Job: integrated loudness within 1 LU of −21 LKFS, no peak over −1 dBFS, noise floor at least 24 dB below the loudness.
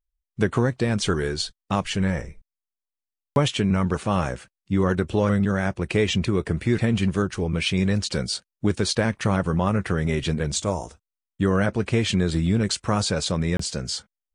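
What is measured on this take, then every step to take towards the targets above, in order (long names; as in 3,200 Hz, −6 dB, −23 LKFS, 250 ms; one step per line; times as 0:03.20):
number of dropouts 1; longest dropout 24 ms; integrated loudness −24.0 LKFS; sample peak −6.5 dBFS; target loudness −21.0 LKFS
→ repair the gap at 0:13.57, 24 ms
level +3 dB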